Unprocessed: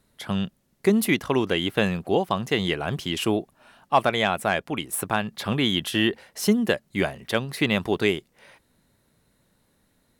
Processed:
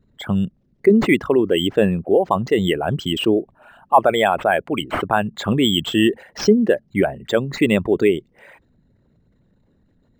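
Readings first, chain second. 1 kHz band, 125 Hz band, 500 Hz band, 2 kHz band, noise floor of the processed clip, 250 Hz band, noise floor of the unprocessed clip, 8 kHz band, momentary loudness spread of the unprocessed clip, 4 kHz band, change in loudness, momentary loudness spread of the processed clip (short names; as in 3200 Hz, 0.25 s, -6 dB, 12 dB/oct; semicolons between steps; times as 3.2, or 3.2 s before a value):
+6.5 dB, +4.5 dB, +8.0 dB, +2.5 dB, -61 dBFS, +6.0 dB, -68 dBFS, -1.5 dB, 6 LU, +3.0 dB, +6.0 dB, 6 LU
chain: formant sharpening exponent 2; decimation joined by straight lines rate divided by 4×; gain +6.5 dB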